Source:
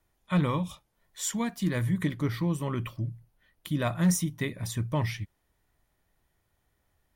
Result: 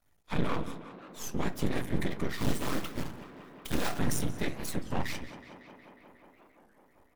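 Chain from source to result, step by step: 0.54–1.51 dip -10 dB, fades 0.20 s; 2.38–3.99 block floating point 3-bit; notches 60/120/180 Hz; comb 4.3 ms, depth 66%; limiter -21 dBFS, peak gain reduction 7 dB; whisperiser; half-wave rectifier; tape echo 0.183 s, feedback 88%, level -10.5 dB, low-pass 3700 Hz; reverb RT60 0.35 s, pre-delay 7 ms, DRR 15.5 dB; record warp 33 1/3 rpm, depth 250 cents; gain +2 dB

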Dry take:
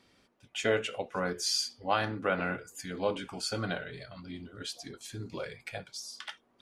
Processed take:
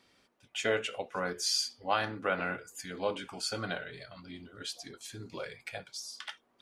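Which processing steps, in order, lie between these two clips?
low shelf 370 Hz -6 dB

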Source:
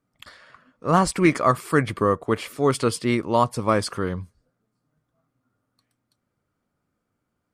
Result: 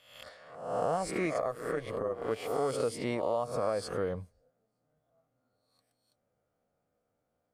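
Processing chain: spectral swells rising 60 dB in 0.69 s; band shelf 600 Hz +11 dB 1 oct; compressor 6:1, threshold -19 dBFS, peak gain reduction 13.5 dB; 1.4–2.31 AM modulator 120 Hz, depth 50%; gain -9 dB

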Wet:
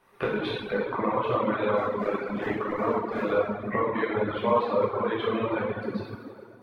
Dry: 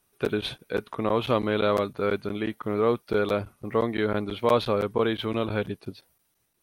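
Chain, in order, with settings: 1.78–3.29 cycle switcher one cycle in 3, muted; graphic EQ 125/250/500/1000/2000/4000 Hz +5/+6/+9/+12/+11/+4 dB; compressor 3:1, threshold -30 dBFS, peak gain reduction 20 dB; high shelf 3800 Hz -9 dB; plate-style reverb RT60 3 s, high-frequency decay 0.65×, DRR -8.5 dB; reverb removal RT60 2 s; gain -2.5 dB

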